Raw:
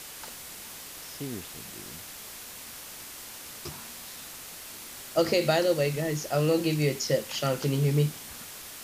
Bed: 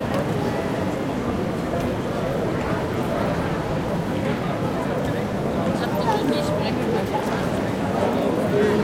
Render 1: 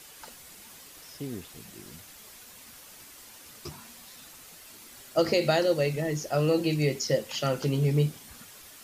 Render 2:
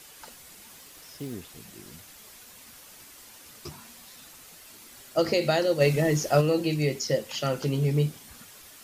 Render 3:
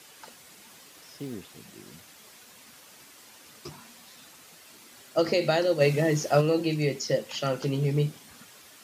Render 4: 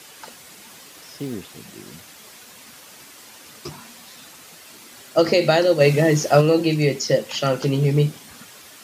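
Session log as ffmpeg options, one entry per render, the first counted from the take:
-af "afftdn=nr=8:nf=-43"
-filter_complex "[0:a]asettb=1/sr,asplit=3[s0][s1][s2];[s0]atrim=end=0.764[s3];[s1]atrim=start=0.76:end=1.33,asetpts=PTS-STARTPTS,afade=t=in:d=0.004:c=qsin,afade=t=out:st=0.566:d=0.004:c=qsin,acrusher=bits=5:mode=log:mix=0:aa=0.000001[s4];[s2]atrim=start=1.326[s5];[s3][s4]acrossfade=d=0.004:c1=hsin:c2=qsin[s6];[s6][s5]acrossfade=d=0.004:c1=qsin:c2=hsin,asplit=3[s7][s8][s9];[s7]afade=t=out:st=5.8:d=0.02[s10];[s8]acontrast=54,afade=t=in:st=5.8:d=0.02,afade=t=out:st=6.4:d=0.02[s11];[s9]afade=t=in:st=6.4:d=0.02[s12];[s10][s11][s12]amix=inputs=3:normalize=0"
-af "highpass=120,highshelf=f=9100:g=-7.5"
-af "volume=2.37,alimiter=limit=0.708:level=0:latency=1"

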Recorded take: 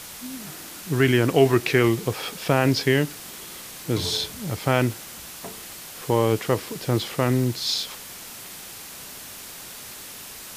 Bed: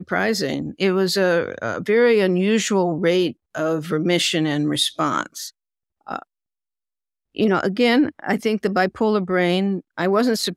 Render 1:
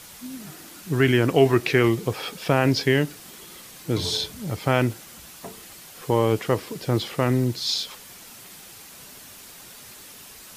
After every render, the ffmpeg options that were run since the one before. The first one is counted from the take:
-af "afftdn=nr=6:nf=-40"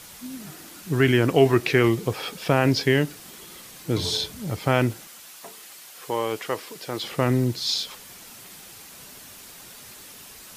-filter_complex "[0:a]asettb=1/sr,asplit=3[s0][s1][s2];[s0]atrim=end=5.074[s3];[s1]atrim=start=5.07:end=7.04,asetpts=PTS-STARTPTS,afade=t=in:d=0.004:c=qsin,afade=t=out:st=1.966:d=0.004:c=qsin,highpass=f=760:p=1[s4];[s2]atrim=start=7.036[s5];[s3][s4]acrossfade=d=0.004:c1=hsin:c2=qsin[s6];[s6][s5]acrossfade=d=0.004:c1=qsin:c2=hsin"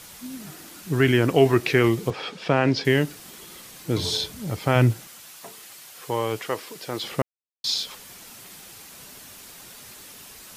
-filter_complex "[0:a]asettb=1/sr,asplit=3[s0][s1][s2];[s0]atrim=end=2.104[s3];[s1]atrim=start=2.1:end=2.85,asetpts=PTS-STARTPTS,afade=t=in:d=0.004:c=qsin,afade=t=out:st=0.746:d=0.004:c=qsin,highpass=120,lowpass=4800[s4];[s2]atrim=start=2.846[s5];[s3][s4]acrossfade=d=0.004:c1=hsin:c2=qsin[s6];[s6][s5]acrossfade=d=0.004:c1=qsin:c2=hsin,asettb=1/sr,asplit=3[s7][s8][s9];[s7]atrim=end=4.754[s10];[s8]atrim=start=4.75:end=6.45,asetpts=PTS-STARTPTS,afade=t=in:d=0.004:c=qsin,afade=t=out:st=1.696:d=0.004:c=qsin,equalizer=f=120:w=2:g=8[s11];[s9]atrim=start=6.446[s12];[s10][s11]acrossfade=d=0.004:c1=hsin:c2=qsin[s13];[s13][s12]acrossfade=d=0.004:c1=qsin:c2=hsin,asplit=3[s14][s15][s16];[s14]atrim=end=7.22,asetpts=PTS-STARTPTS,afade=t=out:st=7.216:d=0.004:c=hsin[s17];[s15]atrim=start=7.22:end=7.64,asetpts=PTS-STARTPTS,volume=0[s18];[s16]atrim=start=7.64,asetpts=PTS-STARTPTS,afade=t=in:d=0.004:c=hsin[s19];[s17][s18][s19]concat=n=3:v=0:a=1"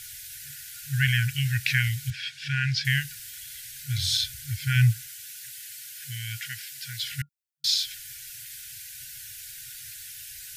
-af "afftfilt=real='re*(1-between(b*sr/4096,140,1400))':imag='im*(1-between(b*sr/4096,140,1400))':win_size=4096:overlap=0.75,highshelf=f=7600:g=5.5"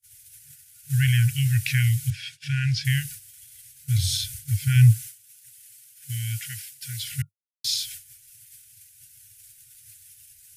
-af "agate=range=0.00708:threshold=0.0112:ratio=16:detection=peak,equalizer=f=100:t=o:w=0.67:g=10,equalizer=f=1600:t=o:w=0.67:g=-7,equalizer=f=4000:t=o:w=0.67:g=-4,equalizer=f=10000:t=o:w=0.67:g=7"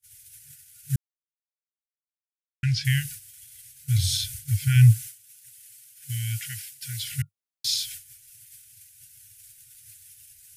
-filter_complex "[0:a]asplit=3[s0][s1][s2];[s0]atrim=end=0.96,asetpts=PTS-STARTPTS,afade=t=out:st=0.956:d=0.004:c=hsin[s3];[s1]atrim=start=0.96:end=2.63,asetpts=PTS-STARTPTS,volume=0[s4];[s2]atrim=start=2.63,asetpts=PTS-STARTPTS,afade=t=in:d=0.004:c=hsin[s5];[s3][s4][s5]concat=n=3:v=0:a=1"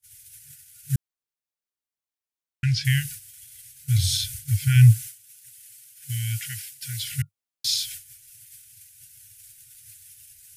-af "volume=1.19"

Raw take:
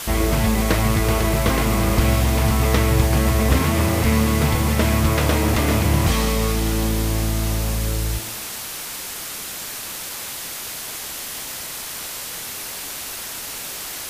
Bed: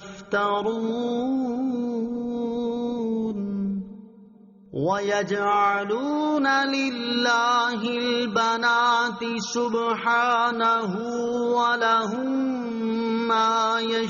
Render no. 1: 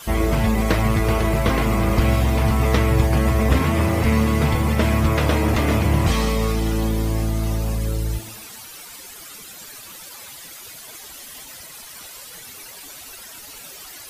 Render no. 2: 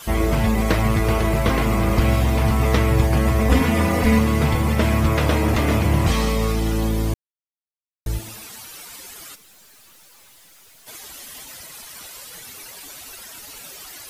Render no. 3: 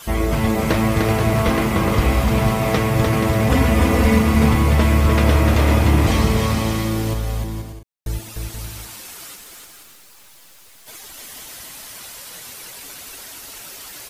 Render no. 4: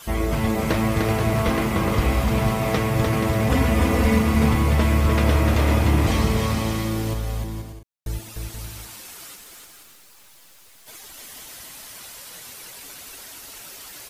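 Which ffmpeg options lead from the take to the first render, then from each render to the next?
-af "afftdn=nr=13:nf=-32"
-filter_complex "[0:a]asettb=1/sr,asplit=3[s0][s1][s2];[s0]atrim=end=3.494[s3];[s1]atrim=start=3.49:end=4.19,asetpts=PTS-STARTPTS,afade=t=in:d=0.004:c=qsin,afade=t=out:st=0.696:d=0.004:c=qsin,aecho=1:1:4.1:0.73,atrim=end_sample=30870[s4];[s2]atrim=start=4.186[s5];[s3][s4]acrossfade=d=0.004:c1=hsin:c2=qsin[s6];[s6][s5]acrossfade=d=0.004:c1=qsin:c2=hsin,asplit=3[s7][s8][s9];[s7]afade=t=out:st=9.34:d=0.02[s10];[s8]aeval=exprs='(tanh(282*val(0)+0.45)-tanh(0.45))/282':c=same,afade=t=in:st=9.34:d=0.02,afade=t=out:st=10.86:d=0.02[s11];[s9]afade=t=in:st=10.86:d=0.02[s12];[s10][s11][s12]amix=inputs=3:normalize=0,asplit=3[s13][s14][s15];[s13]atrim=end=7.14,asetpts=PTS-STARTPTS,afade=t=out:st=7.136:d=0.004:c=hsin[s16];[s14]atrim=start=7.14:end=8.06,asetpts=PTS-STARTPTS,volume=0[s17];[s15]atrim=start=8.06,asetpts=PTS-STARTPTS,afade=t=in:d=0.004:c=hsin[s18];[s16][s17][s18]concat=n=3:v=0:a=1"
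-af "aecho=1:1:300|480|588|652.8|691.7:0.631|0.398|0.251|0.158|0.1"
-af "volume=0.668"

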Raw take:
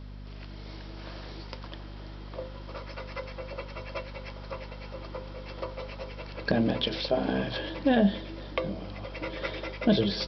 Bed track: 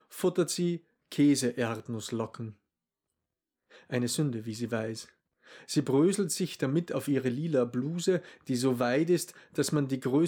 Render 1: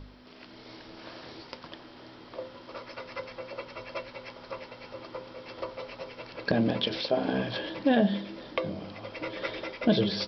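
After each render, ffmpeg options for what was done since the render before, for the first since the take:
-af "bandreject=f=50:t=h:w=4,bandreject=f=100:t=h:w=4,bandreject=f=150:t=h:w=4,bandreject=f=200:t=h:w=4"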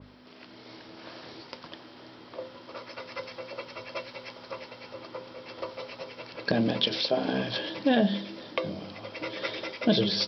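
-af "highpass=86,adynamicequalizer=threshold=0.00447:dfrequency=3000:dqfactor=0.7:tfrequency=3000:tqfactor=0.7:attack=5:release=100:ratio=0.375:range=3.5:mode=boostabove:tftype=highshelf"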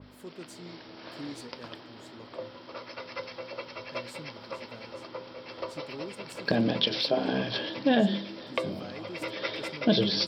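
-filter_complex "[1:a]volume=0.133[s0];[0:a][s0]amix=inputs=2:normalize=0"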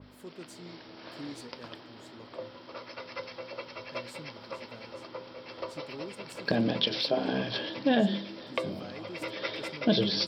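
-af "volume=0.841"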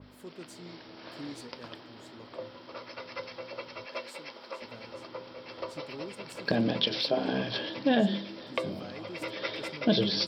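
-filter_complex "[0:a]asettb=1/sr,asplit=3[s0][s1][s2];[s0]atrim=end=3.864[s3];[s1]atrim=start=3.86:end=4.62,asetpts=PTS-STARTPTS,afade=t=in:d=0.004:c=qsin,afade=t=out:st=0.756:d=0.004:c=qsin,highpass=330[s4];[s2]atrim=start=4.616[s5];[s3][s4]acrossfade=d=0.004:c1=hsin:c2=qsin[s6];[s6][s5]acrossfade=d=0.004:c1=qsin:c2=hsin"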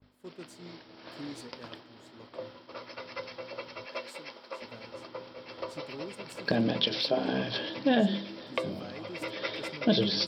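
-af "agate=range=0.0224:threshold=0.00631:ratio=3:detection=peak"

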